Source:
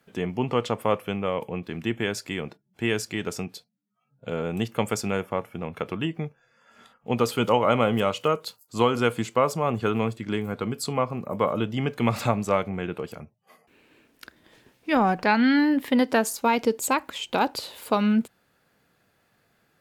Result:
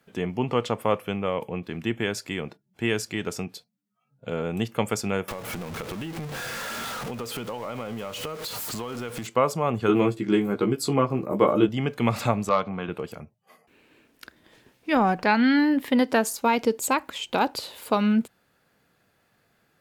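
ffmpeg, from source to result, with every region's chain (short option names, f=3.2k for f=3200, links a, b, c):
-filter_complex "[0:a]asettb=1/sr,asplit=3[a][b][c];[a]atrim=end=5.284[d];[b]atrim=start=5.28:end=9.27,asetpts=PTS-STARTPTS,afade=t=in:d=0.004:c=qsin,afade=t=out:st=3.986:d=0.004:c=qsin,aeval=exprs='val(0)+0.5*0.0422*sgn(val(0))':c=same,acompressor=threshold=-31dB:ratio=5:attack=3.2:release=140:knee=1:detection=peak[e];[c]atrim=start=9.266[f];[d][e]acrossfade=d=0.004:c1=hsin:c2=qsin[g];[g][f]acrossfade=d=0.004:c1=qsin:c2=hsin,asettb=1/sr,asplit=3[h][i][j];[h]atrim=end=9.884[k];[i]atrim=start=9.88:end=11.69,asetpts=PTS-STARTPTS,afade=t=in:d=0.004:c=qsin,afade=t=out:st=1.806:d=0.004:c=qsin,equalizer=f=340:w=2.4:g=10,asplit=2[l][m];[m]adelay=15,volume=-3.5dB[n];[l][n]amix=inputs=2:normalize=0,atrim=end_sample=79821[o];[j]atrim=start=11.686[p];[k][o]acrossfade=d=0.004:c1=hsin:c2=qsin[q];[q][p]acrossfade=d=0.004:c1=qsin:c2=hsin,asettb=1/sr,asplit=3[r][s][t];[r]atrim=end=12.494[u];[s]atrim=start=12.49:end=12.89,asetpts=PTS-STARTPTS,afade=t=in:d=0.004:c=qsin,afade=t=out:st=0.396:d=0.004:c=qsin,acompressor=mode=upward:threshold=-26dB:ratio=2.5:attack=3.2:release=140:knee=2.83:detection=peak,volume=14dB,asoftclip=hard,volume=-14dB,highpass=130,equalizer=f=370:t=q:w=4:g=-6,equalizer=f=1.1k:t=q:w=4:g=8,equalizer=f=2k:t=q:w=4:g=-5,equalizer=f=4k:t=q:w=4:g=5,lowpass=f=5.5k:w=0.5412,lowpass=f=5.5k:w=1.3066[v];[t]atrim=start=12.886[w];[u][v]acrossfade=d=0.004:c1=hsin:c2=qsin[x];[x][w]acrossfade=d=0.004:c1=qsin:c2=hsin"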